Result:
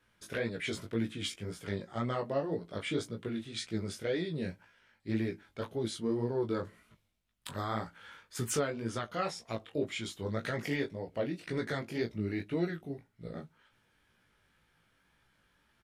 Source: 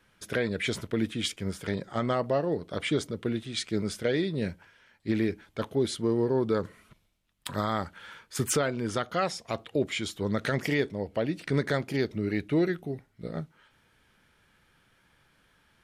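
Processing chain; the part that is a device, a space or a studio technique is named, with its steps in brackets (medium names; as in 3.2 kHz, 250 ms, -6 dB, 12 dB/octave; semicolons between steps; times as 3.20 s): double-tracked vocal (doubling 18 ms -10 dB; chorus 1.9 Hz, delay 16.5 ms, depth 5.3 ms); trim -3.5 dB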